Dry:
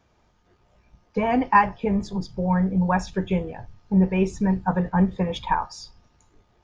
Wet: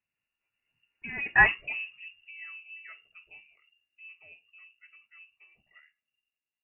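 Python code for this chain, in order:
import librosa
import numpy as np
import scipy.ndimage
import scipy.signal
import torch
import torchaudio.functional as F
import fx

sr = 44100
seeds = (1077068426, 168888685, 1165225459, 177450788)

y = fx.doppler_pass(x, sr, speed_mps=38, closest_m=2.2, pass_at_s=1.47)
y = fx.freq_invert(y, sr, carrier_hz=2800)
y = fx.low_shelf(y, sr, hz=450.0, db=10.0)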